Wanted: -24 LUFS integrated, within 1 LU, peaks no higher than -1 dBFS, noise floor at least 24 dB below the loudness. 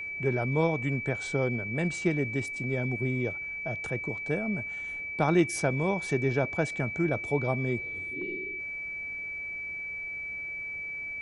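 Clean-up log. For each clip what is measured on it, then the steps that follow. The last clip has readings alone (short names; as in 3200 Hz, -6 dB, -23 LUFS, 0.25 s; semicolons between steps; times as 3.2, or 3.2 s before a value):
steady tone 2300 Hz; tone level -34 dBFS; loudness -30.0 LUFS; peak -12.0 dBFS; loudness target -24.0 LUFS
-> notch 2300 Hz, Q 30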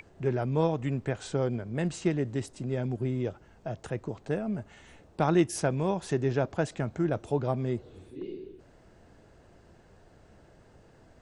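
steady tone none; loudness -31.0 LUFS; peak -12.5 dBFS; loudness target -24.0 LUFS
-> gain +7 dB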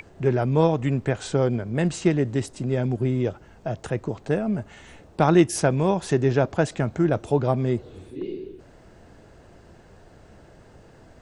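loudness -24.0 LUFS; peak -5.5 dBFS; noise floor -51 dBFS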